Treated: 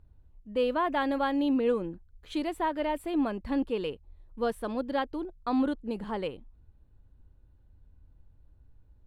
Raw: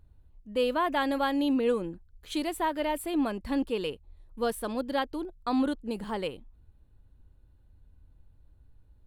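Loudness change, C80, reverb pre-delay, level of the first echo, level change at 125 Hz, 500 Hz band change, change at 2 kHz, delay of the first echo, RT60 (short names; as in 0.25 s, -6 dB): -0.5 dB, none, none, none, 0.0 dB, 0.0 dB, -2.0 dB, none, none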